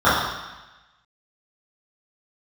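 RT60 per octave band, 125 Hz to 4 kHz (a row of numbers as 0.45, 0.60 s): 1.1, 1.1, 1.0, 1.1, 1.2, 1.2 s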